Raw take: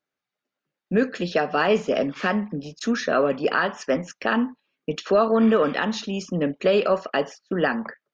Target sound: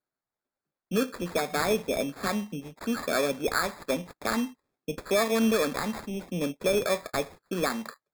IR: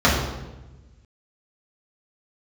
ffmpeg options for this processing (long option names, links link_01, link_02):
-af "acrusher=samples=15:mix=1:aa=0.000001,volume=-6dB"